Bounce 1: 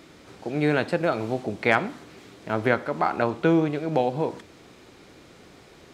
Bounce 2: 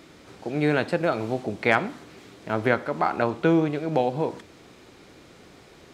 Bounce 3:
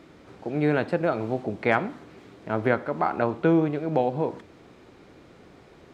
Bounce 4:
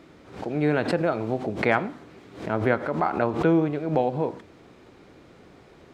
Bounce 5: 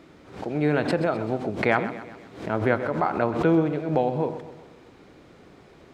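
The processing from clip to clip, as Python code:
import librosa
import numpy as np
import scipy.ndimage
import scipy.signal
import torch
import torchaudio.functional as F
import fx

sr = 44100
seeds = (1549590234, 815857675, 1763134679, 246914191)

y1 = x
y2 = fx.high_shelf(y1, sr, hz=2900.0, db=-11.5)
y3 = fx.pre_swell(y2, sr, db_per_s=110.0)
y4 = fx.echo_feedback(y3, sr, ms=128, feedback_pct=50, wet_db=-13.0)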